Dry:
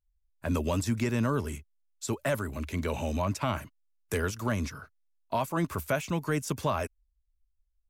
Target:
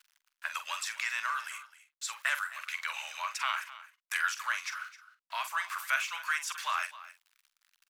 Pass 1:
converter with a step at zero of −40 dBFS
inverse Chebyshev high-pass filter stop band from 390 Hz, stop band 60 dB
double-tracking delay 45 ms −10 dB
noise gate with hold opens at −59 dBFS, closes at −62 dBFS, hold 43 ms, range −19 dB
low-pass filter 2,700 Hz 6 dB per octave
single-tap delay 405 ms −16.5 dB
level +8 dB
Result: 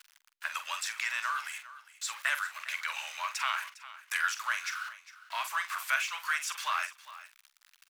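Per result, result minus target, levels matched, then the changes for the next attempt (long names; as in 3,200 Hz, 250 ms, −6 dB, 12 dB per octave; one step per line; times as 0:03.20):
echo 144 ms late; converter with a step at zero: distortion +8 dB
change: single-tap delay 261 ms −16.5 dB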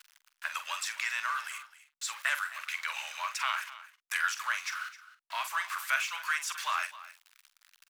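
converter with a step at zero: distortion +8 dB
change: converter with a step at zero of −48.5 dBFS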